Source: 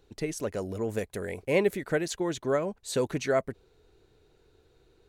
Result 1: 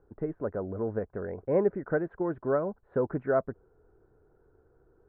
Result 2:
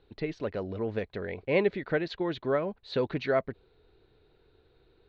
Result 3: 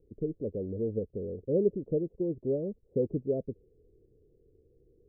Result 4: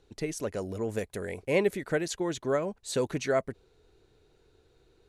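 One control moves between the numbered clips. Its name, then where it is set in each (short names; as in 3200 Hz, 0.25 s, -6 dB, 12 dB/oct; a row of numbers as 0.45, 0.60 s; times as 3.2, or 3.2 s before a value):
elliptic low-pass, frequency: 1500, 4200, 500, 12000 Hz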